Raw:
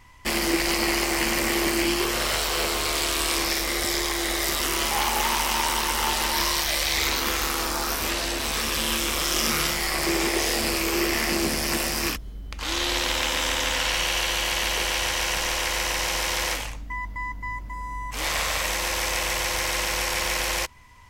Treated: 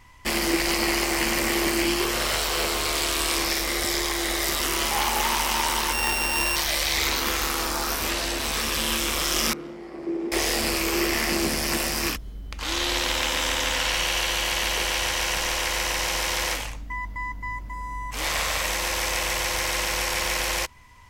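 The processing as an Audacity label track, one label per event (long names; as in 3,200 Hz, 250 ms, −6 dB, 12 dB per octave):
5.930000	6.560000	samples sorted by size in blocks of 16 samples
9.530000	10.320000	resonant band-pass 310 Hz, Q 2.2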